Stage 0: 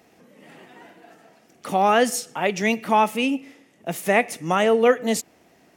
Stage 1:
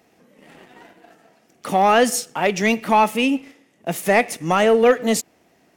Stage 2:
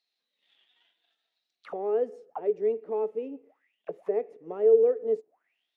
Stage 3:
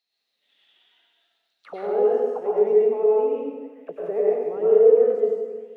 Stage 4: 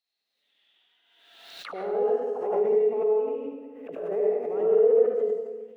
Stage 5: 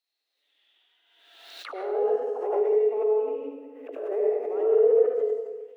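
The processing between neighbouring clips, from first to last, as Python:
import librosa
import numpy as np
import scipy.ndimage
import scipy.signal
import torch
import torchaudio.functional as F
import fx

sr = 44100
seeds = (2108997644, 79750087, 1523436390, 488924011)

y1 = fx.leveller(x, sr, passes=1)
y2 = fx.high_shelf(y1, sr, hz=3800.0, db=-6.0)
y2 = fx.auto_wah(y2, sr, base_hz=430.0, top_hz=4200.0, q=13.0, full_db=-22.0, direction='down')
y2 = y2 * 10.0 ** (1.5 / 20.0)
y3 = fx.rev_plate(y2, sr, seeds[0], rt60_s=1.4, hf_ratio=0.9, predelay_ms=85, drr_db=-6.0)
y4 = y3 + 10.0 ** (-6.0 / 20.0) * np.pad(y3, (int(75 * sr / 1000.0), 0))[:len(y3)]
y4 = fx.pre_swell(y4, sr, db_per_s=46.0)
y4 = y4 * 10.0 ** (-6.5 / 20.0)
y5 = fx.brickwall_highpass(y4, sr, low_hz=260.0)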